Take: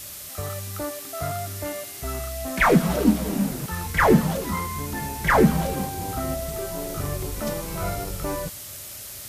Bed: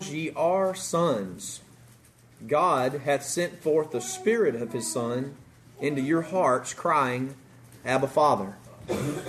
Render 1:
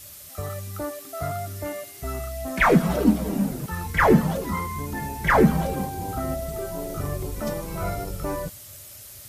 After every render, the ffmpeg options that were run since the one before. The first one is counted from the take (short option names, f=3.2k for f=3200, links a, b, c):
-af "afftdn=nr=7:nf=-38"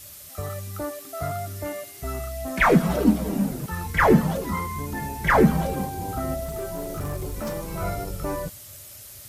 -filter_complex "[0:a]asettb=1/sr,asplit=3[a][b][c];[a]atrim=end=6.444[d];[b]atrim=start=6.44:end=7.73,asetpts=PTS-STARTPTS,afade=t=in:d=0.004:c=qsin,afade=t=out:st=1.286:d=0.004:c=qsin,asoftclip=type=hard:threshold=-25dB[e];[c]atrim=start=7.726[f];[d][e]acrossfade=d=0.004:c1=hsin:c2=qsin[g];[g][f]acrossfade=d=0.004:c1=qsin:c2=hsin"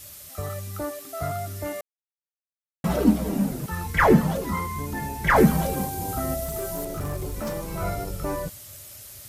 -filter_complex "[0:a]asettb=1/sr,asplit=3[a][b][c];[a]atrim=end=5.364[d];[b]atrim=start=5.36:end=6.85,asetpts=PTS-STARTPTS,afade=t=in:d=0.004:c=qsin,afade=t=out:st=1.486:d=0.004:c=qsin,highshelf=f=5.3k:g=8[e];[c]atrim=start=6.846[f];[d][e]acrossfade=d=0.004:c1=hsin:c2=qsin[g];[g][f]acrossfade=d=0.004:c1=qsin:c2=hsin,asplit=3[h][i][j];[h]atrim=end=1.81,asetpts=PTS-STARTPTS,afade=t=out:st=1.806:d=0.004:c=hsin[k];[i]atrim=start=1.81:end=2.84,asetpts=PTS-STARTPTS,volume=0[l];[j]atrim=start=2.84,asetpts=PTS-STARTPTS,afade=t=in:d=0.004:c=hsin[m];[k][l][m]concat=n=3:v=0:a=1"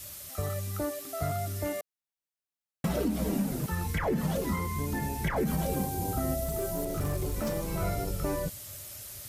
-filter_complex "[0:a]alimiter=limit=-16.5dB:level=0:latency=1:release=102,acrossover=split=750|1500[a][b][c];[a]acompressor=threshold=-26dB:ratio=4[d];[b]acompressor=threshold=-49dB:ratio=4[e];[c]acompressor=threshold=-38dB:ratio=4[f];[d][e][f]amix=inputs=3:normalize=0"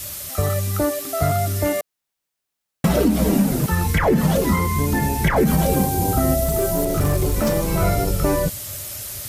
-af "volume=12dB"